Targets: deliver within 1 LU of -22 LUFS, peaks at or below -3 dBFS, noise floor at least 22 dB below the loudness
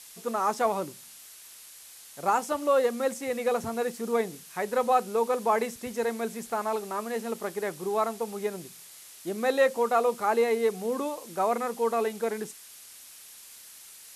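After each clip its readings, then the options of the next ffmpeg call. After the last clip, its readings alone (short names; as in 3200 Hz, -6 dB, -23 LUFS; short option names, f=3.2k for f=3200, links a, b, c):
noise floor -49 dBFS; noise floor target -51 dBFS; loudness -28.5 LUFS; peak -11.5 dBFS; loudness target -22.0 LUFS
-> -af "afftdn=nr=6:nf=-49"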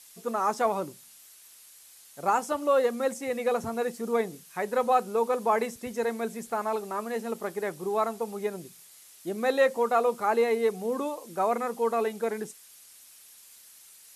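noise floor -53 dBFS; loudness -28.5 LUFS; peak -12.0 dBFS; loudness target -22.0 LUFS
-> -af "volume=6.5dB"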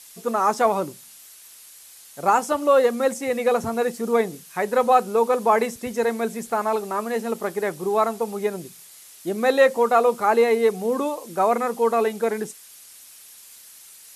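loudness -22.0 LUFS; peak -5.5 dBFS; noise floor -47 dBFS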